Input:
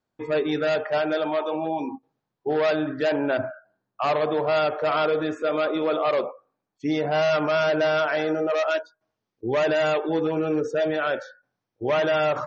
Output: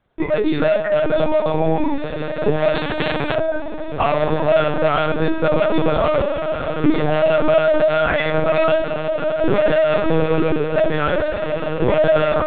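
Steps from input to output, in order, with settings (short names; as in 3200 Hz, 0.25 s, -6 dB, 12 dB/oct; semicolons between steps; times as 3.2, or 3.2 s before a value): 7.94–8.7 HPF 750 Hz 12 dB/oct; compressor 16:1, threshold -28 dBFS, peak gain reduction 10.5 dB; soft clip -21.5 dBFS, distortion -26 dB; diffused feedback echo 1.69 s, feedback 52%, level -6 dB; reverb RT60 0.45 s, pre-delay 3 ms, DRR 4 dB; LPC vocoder at 8 kHz pitch kept; maximiser +18 dB; 2.75–3.35 spectral compressor 2:1; gain -4 dB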